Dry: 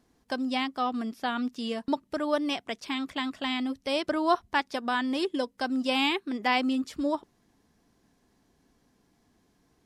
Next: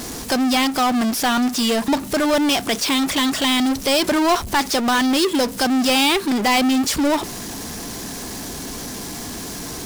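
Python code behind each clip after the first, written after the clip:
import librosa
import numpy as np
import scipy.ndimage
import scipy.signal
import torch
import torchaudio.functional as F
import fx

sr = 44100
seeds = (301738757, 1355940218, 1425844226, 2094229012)

y = fx.bass_treble(x, sr, bass_db=-2, treble_db=10)
y = fx.power_curve(y, sr, exponent=0.35)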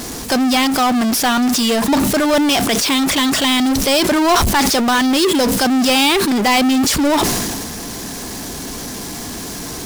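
y = fx.sustainer(x, sr, db_per_s=26.0)
y = y * 10.0 ** (3.0 / 20.0)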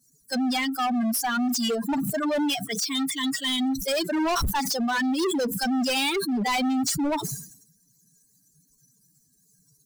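y = fx.bin_expand(x, sr, power=3.0)
y = np.clip(y, -10.0 ** (-21.5 / 20.0), 10.0 ** (-21.5 / 20.0))
y = y * 10.0 ** (-1.0 / 20.0)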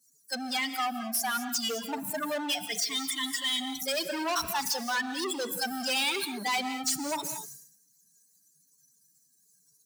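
y = fx.highpass(x, sr, hz=830.0, slope=6)
y = fx.rev_gated(y, sr, seeds[0], gate_ms=240, shape='rising', drr_db=9.5)
y = y * 10.0 ** (-2.0 / 20.0)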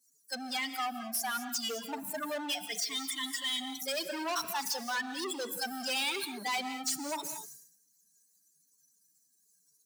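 y = scipy.signal.sosfilt(scipy.signal.butter(2, 200.0, 'highpass', fs=sr, output='sos'), x)
y = y * 10.0 ** (-4.0 / 20.0)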